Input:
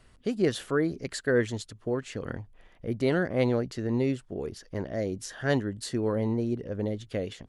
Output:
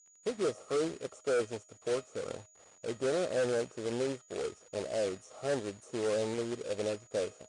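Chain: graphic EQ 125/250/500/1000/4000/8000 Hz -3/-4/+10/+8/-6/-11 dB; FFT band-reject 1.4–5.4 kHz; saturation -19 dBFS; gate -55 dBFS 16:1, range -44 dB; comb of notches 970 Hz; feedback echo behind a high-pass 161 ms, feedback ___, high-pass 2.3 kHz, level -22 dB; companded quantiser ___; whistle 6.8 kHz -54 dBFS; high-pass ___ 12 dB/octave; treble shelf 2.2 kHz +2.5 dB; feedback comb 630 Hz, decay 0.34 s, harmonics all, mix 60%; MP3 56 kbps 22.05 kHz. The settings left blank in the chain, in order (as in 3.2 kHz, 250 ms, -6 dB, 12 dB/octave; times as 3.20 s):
51%, 4-bit, 63 Hz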